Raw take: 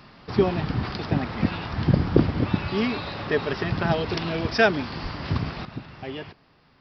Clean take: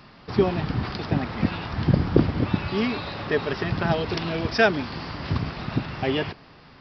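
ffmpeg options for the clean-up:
ffmpeg -i in.wav -filter_complex "[0:a]asplit=3[link_01][link_02][link_03];[link_01]afade=type=out:start_time=5.02:duration=0.02[link_04];[link_02]highpass=frequency=140:width=0.5412,highpass=frequency=140:width=1.3066,afade=type=in:start_time=5.02:duration=0.02,afade=type=out:start_time=5.14:duration=0.02[link_05];[link_03]afade=type=in:start_time=5.14:duration=0.02[link_06];[link_04][link_05][link_06]amix=inputs=3:normalize=0,asetnsamples=nb_out_samples=441:pad=0,asendcmd='5.65 volume volume 10dB',volume=0dB" out.wav

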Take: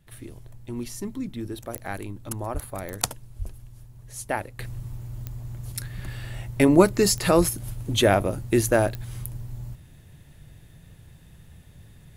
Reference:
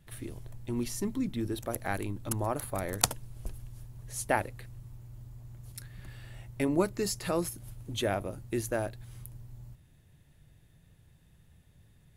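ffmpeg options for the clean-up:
ffmpeg -i in.wav -filter_complex "[0:a]adeclick=threshold=4,asplit=3[link_01][link_02][link_03];[link_01]afade=type=out:start_time=2.53:duration=0.02[link_04];[link_02]highpass=frequency=140:width=0.5412,highpass=frequency=140:width=1.3066,afade=type=in:start_time=2.53:duration=0.02,afade=type=out:start_time=2.65:duration=0.02[link_05];[link_03]afade=type=in:start_time=2.65:duration=0.02[link_06];[link_04][link_05][link_06]amix=inputs=3:normalize=0,asplit=3[link_07][link_08][link_09];[link_07]afade=type=out:start_time=3.38:duration=0.02[link_10];[link_08]highpass=frequency=140:width=0.5412,highpass=frequency=140:width=1.3066,afade=type=in:start_time=3.38:duration=0.02,afade=type=out:start_time=3.5:duration=0.02[link_11];[link_09]afade=type=in:start_time=3.5:duration=0.02[link_12];[link_10][link_11][link_12]amix=inputs=3:normalize=0,asplit=3[link_13][link_14][link_15];[link_13]afade=type=out:start_time=7.37:duration=0.02[link_16];[link_14]highpass=frequency=140:width=0.5412,highpass=frequency=140:width=1.3066,afade=type=in:start_time=7.37:duration=0.02,afade=type=out:start_time=7.49:duration=0.02[link_17];[link_15]afade=type=in:start_time=7.49:duration=0.02[link_18];[link_16][link_17][link_18]amix=inputs=3:normalize=0,asetnsamples=nb_out_samples=441:pad=0,asendcmd='4.59 volume volume -11.5dB',volume=0dB" out.wav

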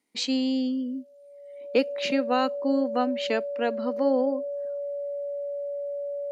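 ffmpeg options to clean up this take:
ffmpeg -i in.wav -af "bandreject=frequency=570:width=30" out.wav

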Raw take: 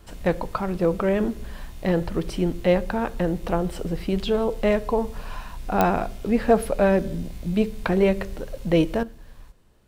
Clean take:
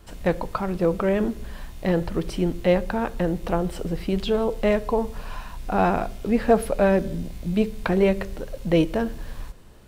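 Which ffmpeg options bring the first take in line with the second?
ffmpeg -i in.wav -af "adeclick=threshold=4,asetnsamples=nb_out_samples=441:pad=0,asendcmd='9.03 volume volume 10.5dB',volume=0dB" out.wav

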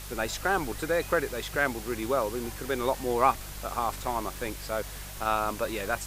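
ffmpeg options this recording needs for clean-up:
ffmpeg -i in.wav -af "adeclick=threshold=4,bandreject=frequency=48.9:width_type=h:width=4,bandreject=frequency=97.8:width_type=h:width=4,bandreject=frequency=146.7:width_type=h:width=4,bandreject=frequency=195.6:width_type=h:width=4,afwtdn=0.0071" out.wav

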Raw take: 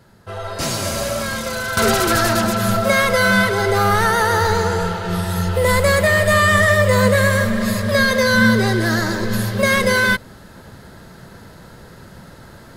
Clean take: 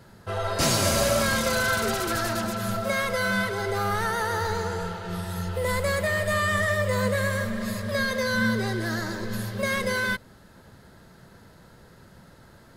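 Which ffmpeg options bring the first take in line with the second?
ffmpeg -i in.wav -af "asetnsamples=nb_out_samples=441:pad=0,asendcmd='1.77 volume volume -10.5dB',volume=0dB" out.wav

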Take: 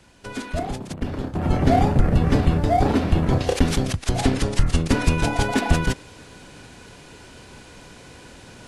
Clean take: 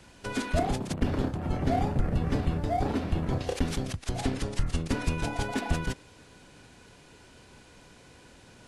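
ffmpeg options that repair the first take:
ffmpeg -i in.wav -af "asetnsamples=nb_out_samples=441:pad=0,asendcmd='1.35 volume volume -9.5dB',volume=0dB" out.wav

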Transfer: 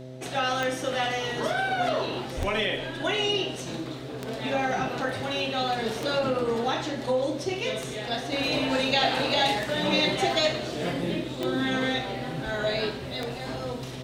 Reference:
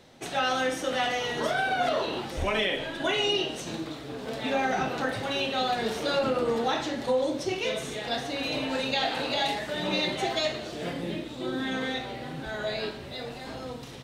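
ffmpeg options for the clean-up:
ffmpeg -i in.wav -af "adeclick=threshold=4,bandreject=frequency=128.6:width_type=h:width=4,bandreject=frequency=257.2:width_type=h:width=4,bandreject=frequency=385.8:width_type=h:width=4,bandreject=frequency=514.4:width_type=h:width=4,bandreject=frequency=643:width_type=h:width=4,asetnsamples=nb_out_samples=441:pad=0,asendcmd='8.32 volume volume -4dB',volume=0dB" out.wav

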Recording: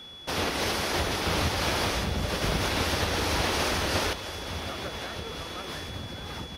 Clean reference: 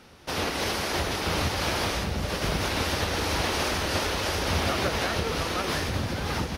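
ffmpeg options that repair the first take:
ffmpeg -i in.wav -af "bandreject=frequency=3400:width=30,asetnsamples=nb_out_samples=441:pad=0,asendcmd='4.13 volume volume 9dB',volume=0dB" out.wav

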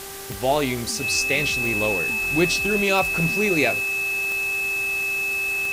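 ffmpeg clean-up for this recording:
ffmpeg -i in.wav -af "adeclick=threshold=4,bandreject=frequency=392.4:width_type=h:width=4,bandreject=frequency=784.8:width_type=h:width=4,bandreject=frequency=1177.2:width_type=h:width=4,bandreject=frequency=1569.6:width_type=h:width=4,bandreject=frequency=1962:width_type=h:width=4,bandreject=frequency=2600:width=30,afwtdn=0.016" out.wav

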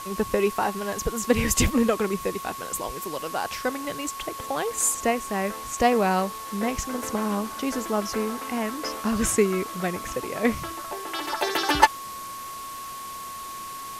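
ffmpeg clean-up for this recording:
ffmpeg -i in.wav -af "adeclick=threshold=4,bandreject=frequency=1100:width=30,afwtdn=0.0089" out.wav

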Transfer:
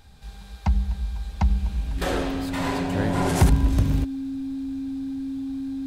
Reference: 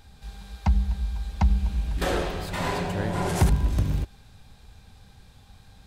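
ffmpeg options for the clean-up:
ffmpeg -i in.wav -af "bandreject=frequency=270:width=30,asetnsamples=nb_out_samples=441:pad=0,asendcmd='2.92 volume volume -3dB',volume=0dB" out.wav

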